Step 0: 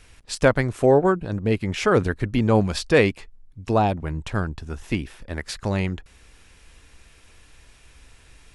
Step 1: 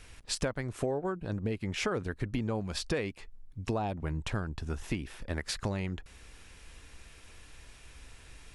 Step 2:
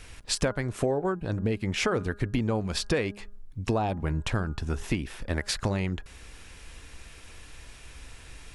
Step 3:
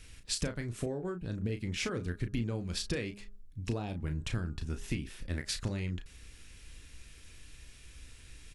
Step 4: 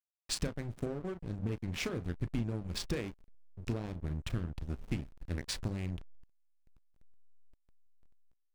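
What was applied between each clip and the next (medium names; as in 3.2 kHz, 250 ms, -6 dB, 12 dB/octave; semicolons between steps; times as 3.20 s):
compression 10:1, threshold -28 dBFS, peak gain reduction 17 dB; trim -1 dB
de-hum 204.6 Hz, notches 8; trim +5.5 dB
peaking EQ 830 Hz -11.5 dB 1.8 oct; doubling 34 ms -8.5 dB; trim -5 dB
hysteresis with a dead band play -33.5 dBFS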